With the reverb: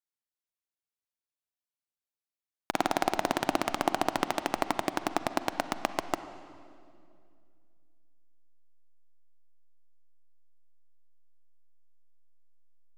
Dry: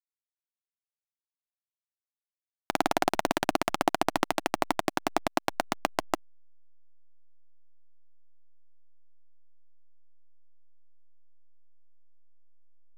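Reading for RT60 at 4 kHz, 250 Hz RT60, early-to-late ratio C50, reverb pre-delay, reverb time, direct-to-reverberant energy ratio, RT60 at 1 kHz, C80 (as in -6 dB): 1.9 s, 2.9 s, 11.5 dB, 37 ms, 2.3 s, 11.0 dB, 2.1 s, 12.5 dB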